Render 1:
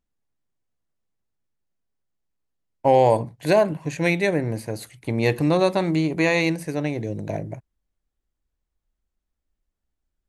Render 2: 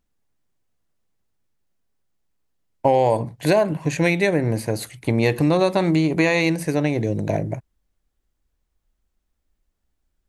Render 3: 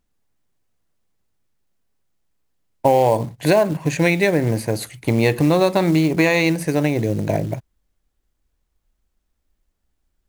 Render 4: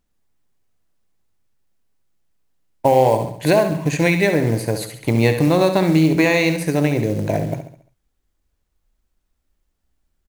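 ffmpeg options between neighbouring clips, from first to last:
ffmpeg -i in.wav -af "acompressor=threshold=-22dB:ratio=3,volume=6.5dB" out.wav
ffmpeg -i in.wav -af "acrusher=bits=6:mode=log:mix=0:aa=0.000001,volume=2dB" out.wav
ffmpeg -i in.wav -af "aecho=1:1:69|138|207|276|345:0.355|0.163|0.0751|0.0345|0.0159" out.wav

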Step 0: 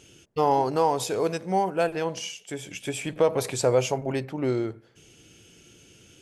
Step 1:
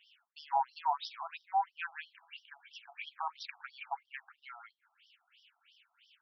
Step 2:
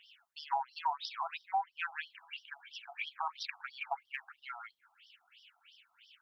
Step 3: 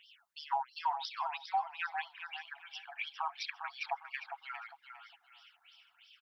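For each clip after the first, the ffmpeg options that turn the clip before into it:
ffmpeg -i in.wav -af "highshelf=frequency=4700:gain=-6,afftfilt=real='re*between(b*sr/1024,940*pow(4200/940,0.5+0.5*sin(2*PI*3*pts/sr))/1.41,940*pow(4200/940,0.5+0.5*sin(2*PI*3*pts/sr))*1.41)':imag='im*between(b*sr/1024,940*pow(4200/940,0.5+0.5*sin(2*PI*3*pts/sr))/1.41,940*pow(4200/940,0.5+0.5*sin(2*PI*3*pts/sr))*1.41)':win_size=1024:overlap=0.75,volume=-3dB" out.wav
ffmpeg -i in.wav -af "aphaser=in_gain=1:out_gain=1:delay=1.6:decay=0.31:speed=1.9:type=triangular,acompressor=threshold=-35dB:ratio=4,volume=4dB" out.wav
ffmpeg -i in.wav -af "aecho=1:1:404|808|1212:0.398|0.104|0.0269" out.wav

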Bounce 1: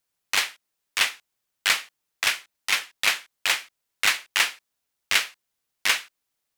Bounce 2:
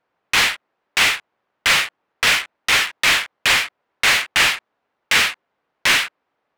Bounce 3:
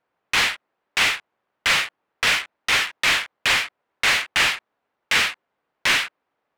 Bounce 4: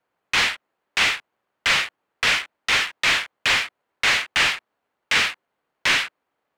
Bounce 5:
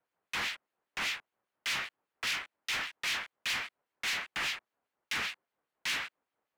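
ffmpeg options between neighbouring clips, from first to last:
ffmpeg -i in.wav -filter_complex "[0:a]asplit=2[link_01][link_02];[link_02]highpass=frequency=720:poles=1,volume=30dB,asoftclip=type=tanh:threshold=-6dB[link_03];[link_01][link_03]amix=inputs=2:normalize=0,lowpass=frequency=4300:poles=1,volume=-6dB,adynamicsmooth=sensitivity=3.5:basefreq=1100" out.wav
ffmpeg -i in.wav -af "highshelf=frequency=9300:gain=-6,volume=-3dB" out.wav
ffmpeg -i in.wav -filter_complex "[0:a]acrossover=split=8500[link_01][link_02];[link_02]acompressor=threshold=-46dB:ratio=4:attack=1:release=60[link_03];[link_01][link_03]amix=inputs=2:normalize=0,acrossover=split=340|710|6200[link_04][link_05][link_06][link_07];[link_05]acrusher=samples=12:mix=1:aa=0.000001[link_08];[link_04][link_08][link_06][link_07]amix=inputs=4:normalize=0" out.wav
ffmpeg -i in.wav -filter_complex "[0:a]asoftclip=type=tanh:threshold=-21dB,acrossover=split=2000[link_01][link_02];[link_01]aeval=exprs='val(0)*(1-0.7/2+0.7/2*cos(2*PI*5*n/s))':channel_layout=same[link_03];[link_02]aeval=exprs='val(0)*(1-0.7/2-0.7/2*cos(2*PI*5*n/s))':channel_layout=same[link_04];[link_03][link_04]amix=inputs=2:normalize=0,volume=-5.5dB" out.wav

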